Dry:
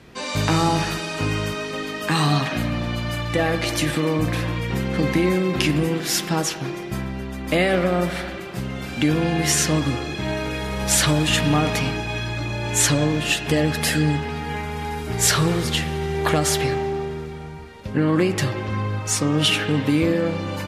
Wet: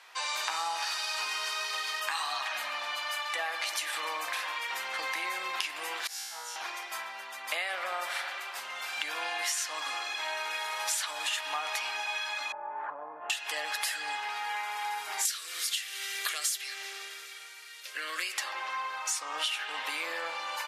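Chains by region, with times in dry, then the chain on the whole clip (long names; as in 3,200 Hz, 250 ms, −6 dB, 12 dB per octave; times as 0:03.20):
0:00.82–0:02.00: variable-slope delta modulation 64 kbit/s + parametric band 4,700 Hz +7 dB 0.7 octaves
0:06.07–0:06.56: low-shelf EQ 220 Hz +10.5 dB + tuned comb filter 60 Hz, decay 1.4 s, mix 100%
0:12.52–0:13.30: inverse Chebyshev low-pass filter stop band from 4,900 Hz, stop band 70 dB + low-shelf EQ 370 Hz +5.5 dB + downward compressor 5 to 1, threshold −20 dBFS
0:15.25–0:18.38: spectral tilt +3 dB per octave + phaser with its sweep stopped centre 360 Hz, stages 4
whole clip: Chebyshev high-pass filter 870 Hz, order 3; downward compressor 6 to 1, threshold −30 dBFS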